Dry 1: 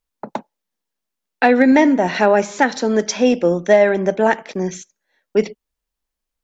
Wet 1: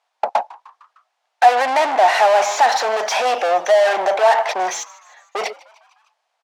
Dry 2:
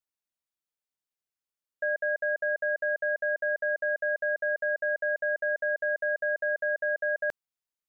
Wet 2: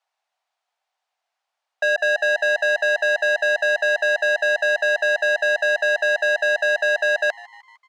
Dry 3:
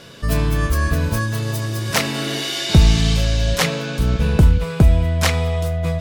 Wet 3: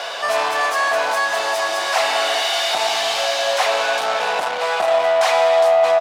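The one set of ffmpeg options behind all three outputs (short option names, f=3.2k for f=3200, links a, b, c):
-filter_complex "[0:a]asplit=2[a][b];[b]highpass=f=720:p=1,volume=35dB,asoftclip=type=tanh:threshold=-1dB[c];[a][c]amix=inputs=2:normalize=0,lowpass=f=6.3k:p=1,volume=-6dB,highpass=f=730:t=q:w=4.9,adynamicsmooth=sensitivity=5.5:basefreq=6k,asplit=2[d][e];[e]asplit=4[f][g][h][i];[f]adelay=152,afreqshift=110,volume=-22dB[j];[g]adelay=304,afreqshift=220,volume=-26.9dB[k];[h]adelay=456,afreqshift=330,volume=-31.8dB[l];[i]adelay=608,afreqshift=440,volume=-36.6dB[m];[j][k][l][m]amix=inputs=4:normalize=0[n];[d][n]amix=inputs=2:normalize=0,volume=-12.5dB"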